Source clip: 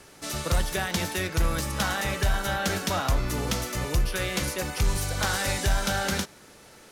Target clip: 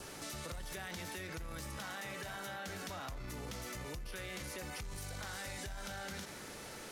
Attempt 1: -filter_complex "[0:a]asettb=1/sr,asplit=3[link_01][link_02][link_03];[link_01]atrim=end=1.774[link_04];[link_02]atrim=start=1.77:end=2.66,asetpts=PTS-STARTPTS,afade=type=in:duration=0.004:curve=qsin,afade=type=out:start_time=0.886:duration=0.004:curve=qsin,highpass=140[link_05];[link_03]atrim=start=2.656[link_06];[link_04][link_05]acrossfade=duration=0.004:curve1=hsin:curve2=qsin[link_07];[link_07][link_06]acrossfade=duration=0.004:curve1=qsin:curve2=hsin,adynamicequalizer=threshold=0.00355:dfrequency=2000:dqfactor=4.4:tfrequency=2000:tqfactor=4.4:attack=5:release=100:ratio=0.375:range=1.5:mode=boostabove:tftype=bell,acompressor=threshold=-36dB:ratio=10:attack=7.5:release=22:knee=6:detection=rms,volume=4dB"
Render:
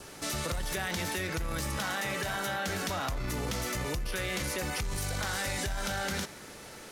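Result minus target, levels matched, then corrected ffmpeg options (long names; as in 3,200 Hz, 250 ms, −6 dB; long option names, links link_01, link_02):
downward compressor: peak gain reduction −11 dB
-filter_complex "[0:a]asettb=1/sr,asplit=3[link_01][link_02][link_03];[link_01]atrim=end=1.774[link_04];[link_02]atrim=start=1.77:end=2.66,asetpts=PTS-STARTPTS,afade=type=in:duration=0.004:curve=qsin,afade=type=out:start_time=0.886:duration=0.004:curve=qsin,highpass=140[link_05];[link_03]atrim=start=2.656[link_06];[link_04][link_05]acrossfade=duration=0.004:curve1=hsin:curve2=qsin[link_07];[link_07][link_06]acrossfade=duration=0.004:curve1=qsin:curve2=hsin,adynamicequalizer=threshold=0.00355:dfrequency=2000:dqfactor=4.4:tfrequency=2000:tqfactor=4.4:attack=5:release=100:ratio=0.375:range=1.5:mode=boostabove:tftype=bell,acompressor=threshold=-48dB:ratio=10:attack=7.5:release=22:knee=6:detection=rms,volume=4dB"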